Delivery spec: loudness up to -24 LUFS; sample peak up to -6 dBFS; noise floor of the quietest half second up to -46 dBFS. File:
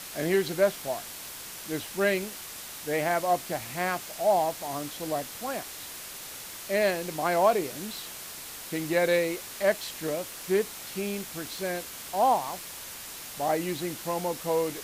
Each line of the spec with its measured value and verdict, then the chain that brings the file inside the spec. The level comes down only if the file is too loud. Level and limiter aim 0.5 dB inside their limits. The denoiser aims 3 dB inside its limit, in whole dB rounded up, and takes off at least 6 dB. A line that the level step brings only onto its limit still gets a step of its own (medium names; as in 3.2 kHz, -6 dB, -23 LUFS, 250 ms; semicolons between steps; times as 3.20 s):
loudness -29.5 LUFS: pass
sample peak -10.5 dBFS: pass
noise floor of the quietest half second -41 dBFS: fail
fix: noise reduction 8 dB, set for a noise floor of -41 dBFS